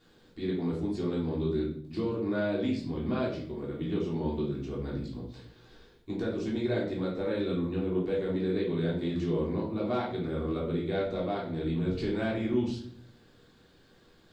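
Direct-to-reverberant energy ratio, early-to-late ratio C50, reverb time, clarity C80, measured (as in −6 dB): −6.0 dB, 5.0 dB, 0.55 s, 9.0 dB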